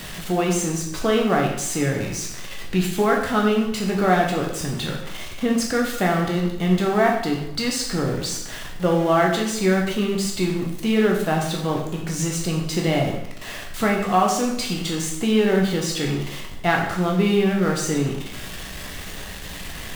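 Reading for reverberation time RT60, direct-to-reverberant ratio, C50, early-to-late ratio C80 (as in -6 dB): 0.80 s, -0.5 dB, 4.5 dB, 7.5 dB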